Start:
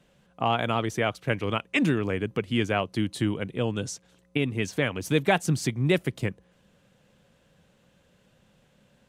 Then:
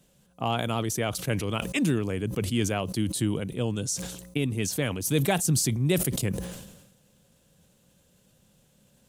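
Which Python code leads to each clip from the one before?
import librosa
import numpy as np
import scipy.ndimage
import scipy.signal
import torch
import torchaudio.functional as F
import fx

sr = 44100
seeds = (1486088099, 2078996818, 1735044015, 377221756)

y = fx.curve_eq(x, sr, hz=(150.0, 2000.0, 11000.0), db=(0, -7, 12))
y = fx.sustainer(y, sr, db_per_s=53.0)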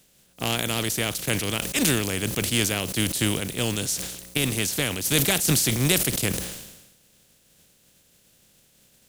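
y = fx.spec_flatten(x, sr, power=0.47)
y = fx.peak_eq(y, sr, hz=1000.0, db=-7.5, octaves=1.2)
y = F.gain(torch.from_numpy(y), 3.5).numpy()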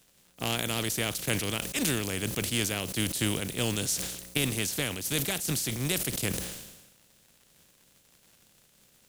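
y = fx.dmg_crackle(x, sr, seeds[0], per_s=120.0, level_db=-42.0)
y = fx.rider(y, sr, range_db=10, speed_s=0.5)
y = F.gain(torch.from_numpy(y), -5.5).numpy()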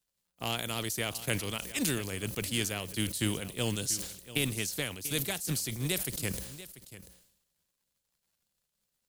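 y = fx.bin_expand(x, sr, power=1.5)
y = y + 10.0 ** (-15.5 / 20.0) * np.pad(y, (int(689 * sr / 1000.0), 0))[:len(y)]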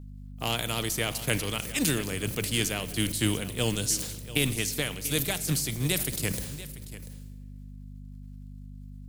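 y = fx.add_hum(x, sr, base_hz=50, snr_db=11)
y = fx.room_shoebox(y, sr, seeds[1], volume_m3=3400.0, walls='mixed', distance_m=0.47)
y = F.gain(torch.from_numpy(y), 4.0).numpy()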